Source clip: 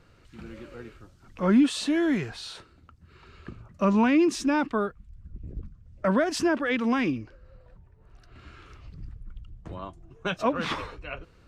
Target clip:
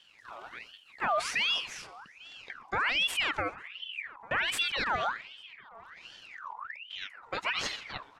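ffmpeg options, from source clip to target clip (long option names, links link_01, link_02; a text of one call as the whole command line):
ffmpeg -i in.wav -filter_complex "[0:a]asplit=2[link_01][link_02];[link_02]asplit=4[link_03][link_04][link_05][link_06];[link_03]adelay=176,afreqshift=-62,volume=-21dB[link_07];[link_04]adelay=352,afreqshift=-124,volume=-26.8dB[link_08];[link_05]adelay=528,afreqshift=-186,volume=-32.7dB[link_09];[link_06]adelay=704,afreqshift=-248,volume=-38.5dB[link_10];[link_07][link_08][link_09][link_10]amix=inputs=4:normalize=0[link_11];[link_01][link_11]amix=inputs=2:normalize=0,atempo=1.4,alimiter=limit=-20dB:level=0:latency=1:release=18,asplit=2[link_12][link_13];[link_13]adelay=848,lowpass=frequency=820:poles=1,volume=-21dB,asplit=2[link_14][link_15];[link_15]adelay=848,lowpass=frequency=820:poles=1,volume=0.46,asplit=2[link_16][link_17];[link_17]adelay=848,lowpass=frequency=820:poles=1,volume=0.46[link_18];[link_14][link_16][link_18]amix=inputs=3:normalize=0[link_19];[link_12][link_19]amix=inputs=2:normalize=0,aeval=exprs='val(0)*sin(2*PI*2000*n/s+2000*0.55/1.3*sin(2*PI*1.3*n/s))':channel_layout=same" out.wav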